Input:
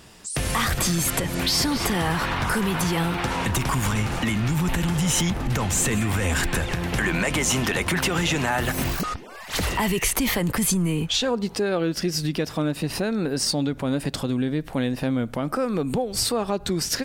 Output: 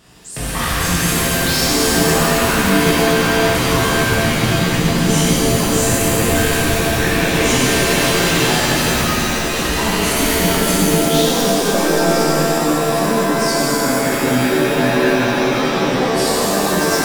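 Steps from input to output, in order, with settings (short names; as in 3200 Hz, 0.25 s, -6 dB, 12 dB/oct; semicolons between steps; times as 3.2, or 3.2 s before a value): 13.67–15.35 synth low-pass 1700 Hz, resonance Q 5; shimmer reverb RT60 3.4 s, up +7 st, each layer -2 dB, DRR -8.5 dB; gain -4 dB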